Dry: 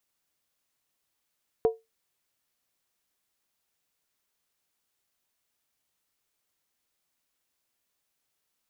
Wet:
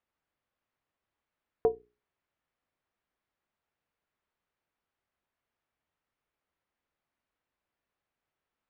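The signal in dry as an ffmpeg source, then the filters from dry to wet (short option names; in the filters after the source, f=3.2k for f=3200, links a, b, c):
-f lavfi -i "aevalsrc='0.178*pow(10,-3*t/0.2)*sin(2*PI*450*t)+0.0473*pow(10,-3*t/0.158)*sin(2*PI*717.3*t)+0.0126*pow(10,-3*t/0.137)*sin(2*PI*961.2*t)+0.00335*pow(10,-3*t/0.132)*sin(2*PI*1033.2*t)+0.000891*pow(10,-3*t/0.123)*sin(2*PI*1193.8*t)':d=0.63:s=44100"
-af "lowpass=2k,equalizer=f=63:t=o:w=0.77:g=5,bandreject=f=60:t=h:w=6,bandreject=f=120:t=h:w=6,bandreject=f=180:t=h:w=6,bandreject=f=240:t=h:w=6,bandreject=f=300:t=h:w=6,bandreject=f=360:t=h:w=6,bandreject=f=420:t=h:w=6"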